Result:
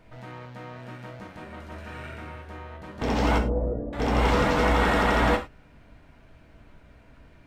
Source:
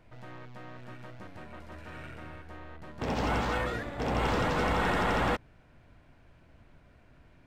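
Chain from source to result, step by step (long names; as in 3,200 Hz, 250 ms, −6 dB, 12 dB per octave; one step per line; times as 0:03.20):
0:03.38–0:03.93: Chebyshev low-pass filter 570 Hz, order 3
reverb whose tail is shaped and stops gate 130 ms falling, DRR 3 dB
level +4 dB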